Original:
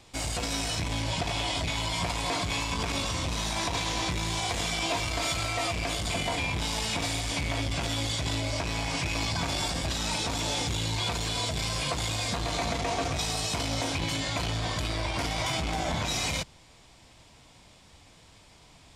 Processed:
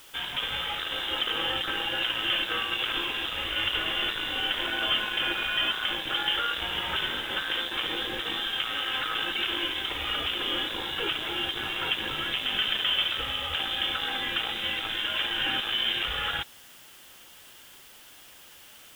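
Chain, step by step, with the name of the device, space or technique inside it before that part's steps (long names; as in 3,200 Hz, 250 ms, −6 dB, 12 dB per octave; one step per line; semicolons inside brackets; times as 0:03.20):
scrambled radio voice (band-pass filter 330–2,700 Hz; voice inversion scrambler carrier 3,800 Hz; white noise bed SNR 22 dB)
level +5 dB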